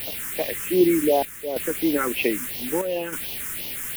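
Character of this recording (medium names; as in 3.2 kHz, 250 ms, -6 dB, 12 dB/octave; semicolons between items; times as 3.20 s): a quantiser's noise floor 6-bit, dither triangular; phasing stages 4, 2.8 Hz, lowest notch 680–1400 Hz; chopped level 0.64 Hz, depth 60%, duty 80%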